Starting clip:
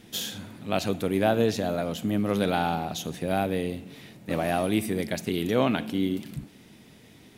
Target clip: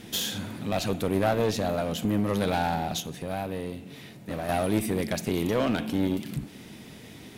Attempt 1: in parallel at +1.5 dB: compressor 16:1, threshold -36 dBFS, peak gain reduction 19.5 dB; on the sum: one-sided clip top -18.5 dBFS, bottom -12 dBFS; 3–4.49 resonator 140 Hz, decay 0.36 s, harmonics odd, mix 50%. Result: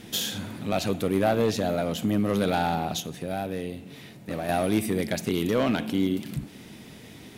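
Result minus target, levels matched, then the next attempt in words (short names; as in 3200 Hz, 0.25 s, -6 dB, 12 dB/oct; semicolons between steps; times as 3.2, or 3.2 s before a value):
one-sided clip: distortion -6 dB
in parallel at +1.5 dB: compressor 16:1, threshold -36 dBFS, peak gain reduction 19.5 dB; on the sum: one-sided clip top -26 dBFS, bottom -12 dBFS; 3–4.49 resonator 140 Hz, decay 0.36 s, harmonics odd, mix 50%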